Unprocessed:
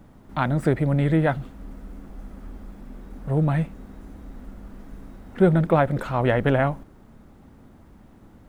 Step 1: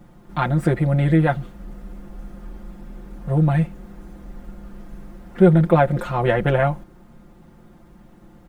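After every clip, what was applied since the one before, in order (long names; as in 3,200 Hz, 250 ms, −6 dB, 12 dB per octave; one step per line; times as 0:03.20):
comb filter 5.7 ms, depth 82%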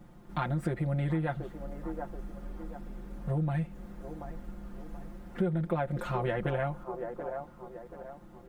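delay with a band-pass on its return 732 ms, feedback 38%, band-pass 610 Hz, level −12 dB
downward compressor 4 to 1, threshold −23 dBFS, peak gain reduction 13 dB
level −5.5 dB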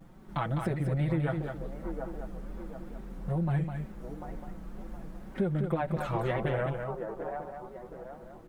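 tape wow and flutter 140 cents
single-tap delay 206 ms −6 dB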